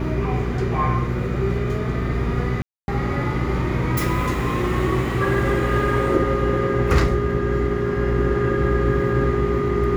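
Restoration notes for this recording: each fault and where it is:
hum 60 Hz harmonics 4 -26 dBFS
2.62–2.88 s: dropout 261 ms

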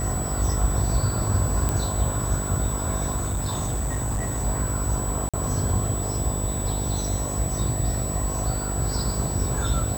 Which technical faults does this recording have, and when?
buzz 50 Hz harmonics 13 -29 dBFS
whine 7.9 kHz -31 dBFS
1.69 s: pop -10 dBFS
3.16–4.45 s: clipped -22.5 dBFS
5.29–5.34 s: dropout 46 ms

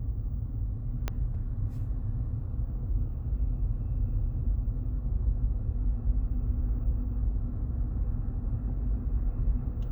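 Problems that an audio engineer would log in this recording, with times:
1.08 s: pop -16 dBFS

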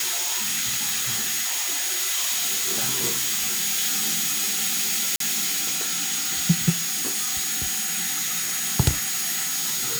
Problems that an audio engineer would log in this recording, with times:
whine 6.7 kHz -29 dBFS
5.16–5.20 s: dropout 43 ms

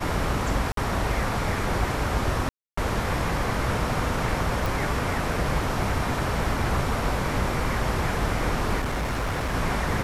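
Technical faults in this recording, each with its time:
0.72–0.77 s: dropout 53 ms
2.49–2.77 s: dropout 284 ms
4.66 s: pop
8.79–9.55 s: clipped -23.5 dBFS

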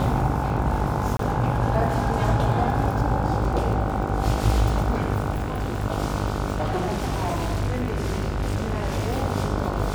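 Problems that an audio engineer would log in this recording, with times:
buzz 50 Hz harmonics 30 -28 dBFS
crackle 39 per s -30 dBFS
1.17–1.19 s: dropout 23 ms
5.31–5.84 s: clipped -21.5 dBFS
6.56–9.22 s: clipped -20.5 dBFS

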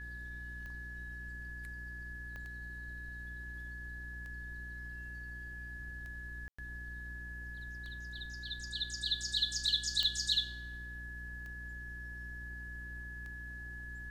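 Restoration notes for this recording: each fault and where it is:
hum 60 Hz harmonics 6 -48 dBFS
tick 33 1/3 rpm -36 dBFS
whine 1.7 kHz -45 dBFS
2.36 s: pop -34 dBFS
6.48–6.58 s: dropout 105 ms
10.03 s: pop -20 dBFS

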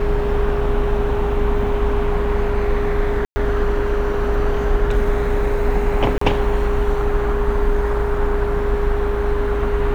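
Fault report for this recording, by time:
whine 410 Hz -21 dBFS
3.25–3.36 s: dropout 110 ms
6.18–6.21 s: dropout 34 ms

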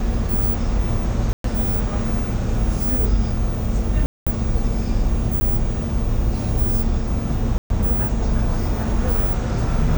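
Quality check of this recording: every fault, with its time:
1.33–1.44 s: dropout 113 ms
4.06–4.27 s: dropout 206 ms
5.40–5.41 s: dropout 10 ms
7.58–7.70 s: dropout 122 ms

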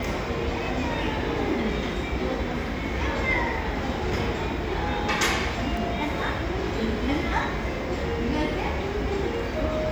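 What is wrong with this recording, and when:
5.77 s: dropout 2.9 ms

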